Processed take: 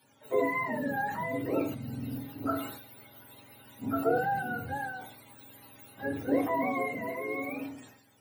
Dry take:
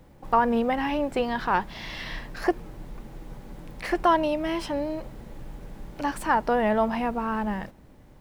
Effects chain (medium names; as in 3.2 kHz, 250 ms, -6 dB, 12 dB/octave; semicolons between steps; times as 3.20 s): spectrum inverted on a logarithmic axis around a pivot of 690 Hz; high-pass 120 Hz; hum notches 50/100/150/200/250 Hz; on a send at -4 dB: bass shelf 200 Hz +10.5 dB + reverberation RT60 0.40 s, pre-delay 4 ms; on the sum: decay stretcher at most 69 dB/s; trim -8 dB